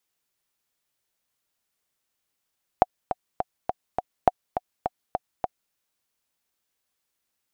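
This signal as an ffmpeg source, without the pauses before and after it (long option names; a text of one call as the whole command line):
ffmpeg -f lavfi -i "aevalsrc='pow(10,(-2-9.5*gte(mod(t,5*60/206),60/206))/20)*sin(2*PI*735*mod(t,60/206))*exp(-6.91*mod(t,60/206)/0.03)':duration=2.91:sample_rate=44100" out.wav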